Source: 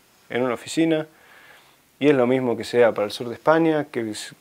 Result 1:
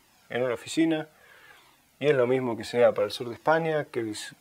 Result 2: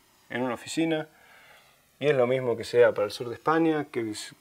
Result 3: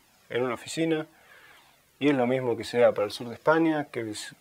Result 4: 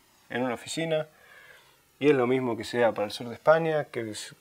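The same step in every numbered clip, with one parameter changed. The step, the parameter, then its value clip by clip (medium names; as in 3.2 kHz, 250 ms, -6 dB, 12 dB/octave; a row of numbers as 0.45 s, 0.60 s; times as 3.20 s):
Shepard-style flanger, rate: 1.2 Hz, 0.23 Hz, 1.9 Hz, 0.39 Hz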